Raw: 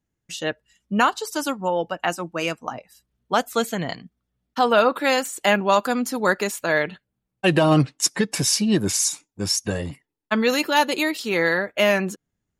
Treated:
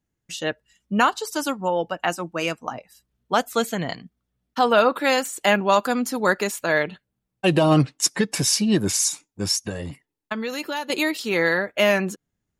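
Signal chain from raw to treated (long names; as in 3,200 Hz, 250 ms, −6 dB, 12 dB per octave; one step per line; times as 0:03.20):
0:06.82–0:07.70: dynamic equaliser 1,700 Hz, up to −6 dB, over −39 dBFS, Q 1.9
0:09.56–0:10.90: downward compressor 10 to 1, threshold −25 dBFS, peak gain reduction 12.5 dB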